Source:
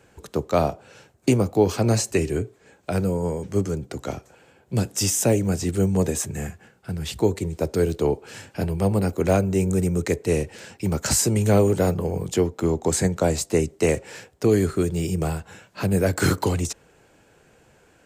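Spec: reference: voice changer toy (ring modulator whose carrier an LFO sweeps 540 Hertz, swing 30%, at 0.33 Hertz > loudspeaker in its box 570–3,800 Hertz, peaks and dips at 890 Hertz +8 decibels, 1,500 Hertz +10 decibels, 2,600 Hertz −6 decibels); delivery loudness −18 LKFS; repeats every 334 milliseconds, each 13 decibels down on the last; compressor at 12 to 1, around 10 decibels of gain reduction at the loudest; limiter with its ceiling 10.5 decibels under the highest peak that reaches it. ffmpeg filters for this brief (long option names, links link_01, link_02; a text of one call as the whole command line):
ffmpeg -i in.wav -af "acompressor=threshold=-23dB:ratio=12,alimiter=limit=-22dB:level=0:latency=1,aecho=1:1:334|668|1002:0.224|0.0493|0.0108,aeval=exprs='val(0)*sin(2*PI*540*n/s+540*0.3/0.33*sin(2*PI*0.33*n/s))':channel_layout=same,highpass=570,equalizer=frequency=890:width_type=q:width=4:gain=8,equalizer=frequency=1500:width_type=q:width=4:gain=10,equalizer=frequency=2600:width_type=q:width=4:gain=-6,lowpass=frequency=3800:width=0.5412,lowpass=frequency=3800:width=1.3066,volume=15.5dB" out.wav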